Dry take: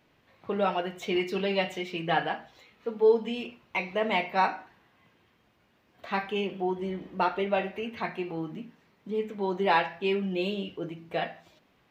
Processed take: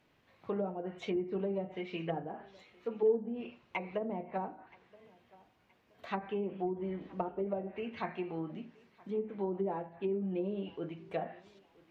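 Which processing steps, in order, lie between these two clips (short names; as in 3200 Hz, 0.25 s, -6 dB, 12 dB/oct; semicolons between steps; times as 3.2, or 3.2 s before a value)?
treble ducked by the level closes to 450 Hz, closed at -24 dBFS; thinning echo 0.973 s, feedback 32%, high-pass 230 Hz, level -23 dB; gain -4.5 dB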